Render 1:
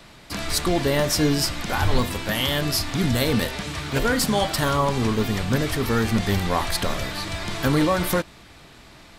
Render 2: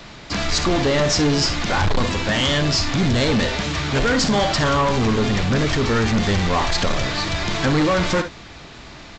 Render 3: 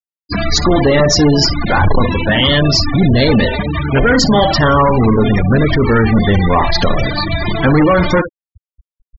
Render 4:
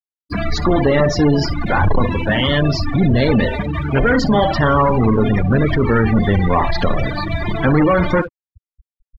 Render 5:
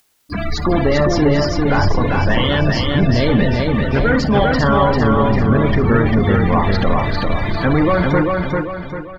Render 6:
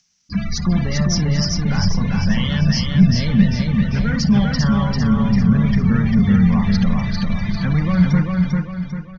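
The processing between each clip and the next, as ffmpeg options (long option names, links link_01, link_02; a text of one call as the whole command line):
ffmpeg -i in.wav -af "aecho=1:1:54|68:0.178|0.158,aresample=16000,asoftclip=type=tanh:threshold=-21.5dB,aresample=44100,volume=7.5dB" out.wav
ffmpeg -i in.wav -af "afftfilt=real='re*gte(hypot(re,im),0.112)':imag='im*gte(hypot(re,im),0.112)':win_size=1024:overlap=0.75,volume=8dB" out.wav
ffmpeg -i in.wav -filter_complex "[0:a]acrossover=split=190[link_01][link_02];[link_02]aeval=exprs='sgn(val(0))*max(abs(val(0))-0.0119,0)':channel_layout=same[link_03];[link_01][link_03]amix=inputs=2:normalize=0,bass=frequency=250:gain=0,treble=frequency=4000:gain=-14,volume=-3dB" out.wav
ffmpeg -i in.wav -filter_complex "[0:a]acompressor=mode=upward:threshold=-31dB:ratio=2.5,asplit=2[link_01][link_02];[link_02]aecho=0:1:396|792|1188|1584|1980:0.708|0.297|0.125|0.0525|0.022[link_03];[link_01][link_03]amix=inputs=2:normalize=0,volume=-1.5dB" out.wav
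ffmpeg -i in.wav -af "firequalizer=gain_entry='entry(120,0);entry(190,12);entry(290,-14);entry(840,-10);entry(1300,-7);entry(2200,-2);entry(3800,-3);entry(5900,13);entry(9100,-28)':delay=0.05:min_phase=1,volume=-3dB" out.wav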